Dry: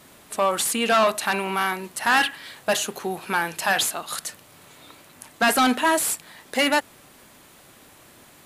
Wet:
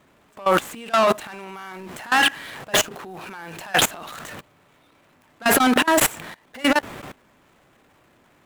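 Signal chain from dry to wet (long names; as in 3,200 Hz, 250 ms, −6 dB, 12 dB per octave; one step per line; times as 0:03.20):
running median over 9 samples
transient designer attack −9 dB, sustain +12 dB
output level in coarse steps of 21 dB
level +5 dB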